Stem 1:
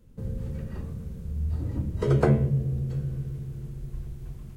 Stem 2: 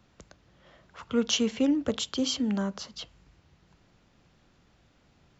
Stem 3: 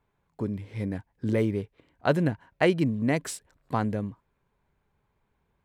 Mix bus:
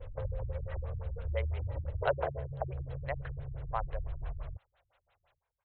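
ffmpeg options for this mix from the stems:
-filter_complex "[0:a]highshelf=f=2.8k:g=-11,acompressor=mode=upward:threshold=-35dB:ratio=2.5,alimiter=limit=-21dB:level=0:latency=1:release=83,volume=2dB[a];[1:a]acompressor=threshold=-31dB:ratio=6,volume=-14dB[b];[2:a]volume=-17dB[c];[a][b]amix=inputs=2:normalize=0,adynamicequalizer=threshold=0.00282:dfrequency=1300:dqfactor=0.74:tfrequency=1300:tqfactor=0.74:attack=5:release=100:ratio=0.375:range=3.5:mode=cutabove:tftype=bell,acompressor=threshold=-31dB:ratio=6,volume=0dB[d];[c][d]amix=inputs=2:normalize=0,firequalizer=gain_entry='entry(100,0);entry(210,-28);entry(550,12)':delay=0.05:min_phase=1,afftfilt=real='re*lt(b*sr/1024,230*pow(4300/230,0.5+0.5*sin(2*PI*5.9*pts/sr)))':imag='im*lt(b*sr/1024,230*pow(4300/230,0.5+0.5*sin(2*PI*5.9*pts/sr)))':win_size=1024:overlap=0.75"

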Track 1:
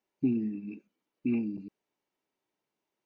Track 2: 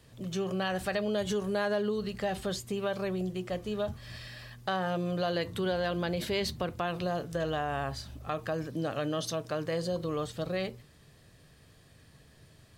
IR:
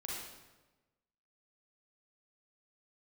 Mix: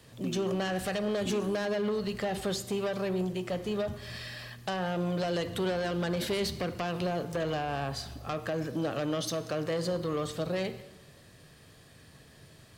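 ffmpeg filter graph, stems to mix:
-filter_complex "[0:a]highpass=460,volume=0.5dB[a];[1:a]aeval=exprs='0.119*sin(PI/2*2.24*val(0)/0.119)':c=same,volume=-7.5dB,asplit=2[b][c];[c]volume=-11.5dB[d];[2:a]atrim=start_sample=2205[e];[d][e]afir=irnorm=-1:irlink=0[f];[a][b][f]amix=inputs=3:normalize=0,lowshelf=f=85:g=-8.5,acrossover=split=400[g][h];[h]acompressor=threshold=-32dB:ratio=2.5[i];[g][i]amix=inputs=2:normalize=0"

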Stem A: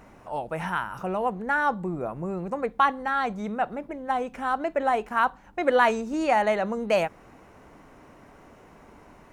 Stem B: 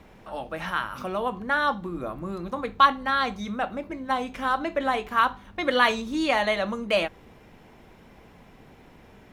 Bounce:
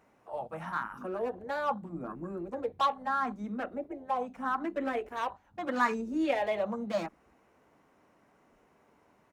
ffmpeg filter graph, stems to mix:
-filter_complex "[0:a]volume=22dB,asoftclip=hard,volume=-22dB,volume=-13.5dB[a];[1:a]afwtdn=0.0224,equalizer=f=3.3k:t=o:w=3:g=-10.5,asplit=2[b][c];[c]afreqshift=0.8[d];[b][d]amix=inputs=2:normalize=1,volume=-1,adelay=5.1,volume=0dB[e];[a][e]amix=inputs=2:normalize=0,highpass=f=200:p=1"

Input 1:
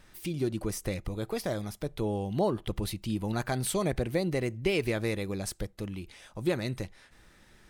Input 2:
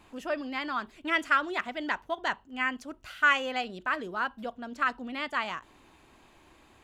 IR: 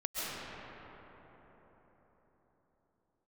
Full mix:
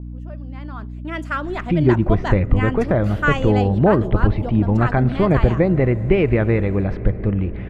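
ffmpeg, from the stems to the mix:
-filter_complex "[0:a]lowpass=f=2.1k:w=0.5412,lowpass=f=2.1k:w=1.3066,lowshelf=f=130:g=10,adelay=1450,volume=0.5dB,asplit=2[a][b];[b]volume=-21dB[c];[1:a]tiltshelf=f=1.1k:g=7.5,volume=-7dB,afade=t=in:st=1.09:d=0.73:silence=0.398107[d];[2:a]atrim=start_sample=2205[e];[c][e]afir=irnorm=-1:irlink=0[f];[a][d][f]amix=inputs=3:normalize=0,dynaudnorm=f=160:g=9:m=13.5dB,aeval=exprs='val(0)+0.0316*(sin(2*PI*60*n/s)+sin(2*PI*2*60*n/s)/2+sin(2*PI*3*60*n/s)/3+sin(2*PI*4*60*n/s)/4+sin(2*PI*5*60*n/s)/5)':c=same,adynamicequalizer=threshold=0.0112:dfrequency=4100:dqfactor=0.7:tfrequency=4100:tqfactor=0.7:attack=5:release=100:ratio=0.375:range=2.5:mode=boostabove:tftype=highshelf"

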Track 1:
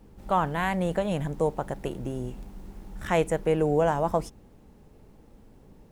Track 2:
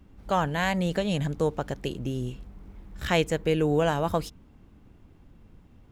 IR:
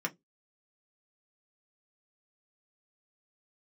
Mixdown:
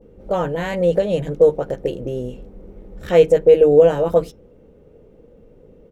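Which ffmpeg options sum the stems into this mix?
-filter_complex "[0:a]lowpass=f=500:t=q:w=5.5,volume=1dB[a];[1:a]volume=-1,adelay=19,volume=-5.5dB,asplit=2[b][c];[c]volume=-6.5dB[d];[2:a]atrim=start_sample=2205[e];[d][e]afir=irnorm=-1:irlink=0[f];[a][b][f]amix=inputs=3:normalize=0"

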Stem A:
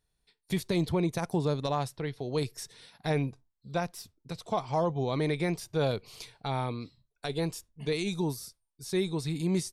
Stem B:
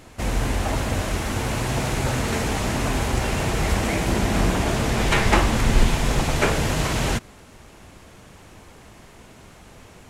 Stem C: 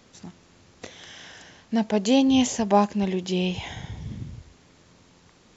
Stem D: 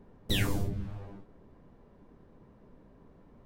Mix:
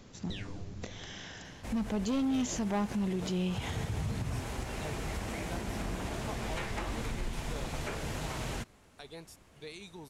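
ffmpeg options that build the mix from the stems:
-filter_complex "[0:a]lowshelf=f=390:g=-10.5,adelay=1750,volume=-11.5dB[a];[1:a]adelay=1450,volume=-14.5dB[b];[2:a]lowshelf=f=240:g=10,asoftclip=type=hard:threshold=-14.5dB,volume=-2.5dB[c];[3:a]acompressor=threshold=-33dB:ratio=3,lowpass=f=6.2k:w=0.5412,lowpass=f=6.2k:w=1.3066,volume=-6dB[d];[a][b][c][d]amix=inputs=4:normalize=0,alimiter=level_in=2dB:limit=-24dB:level=0:latency=1:release=117,volume=-2dB"

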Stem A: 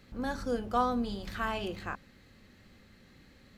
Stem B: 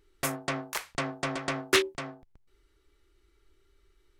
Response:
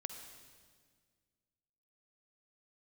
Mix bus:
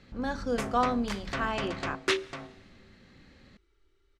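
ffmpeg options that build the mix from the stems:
-filter_complex "[0:a]volume=2dB[a];[1:a]adelay=350,volume=-5.5dB,asplit=2[b][c];[c]volume=-9dB[d];[2:a]atrim=start_sample=2205[e];[d][e]afir=irnorm=-1:irlink=0[f];[a][b][f]amix=inputs=3:normalize=0,lowpass=6.3k"

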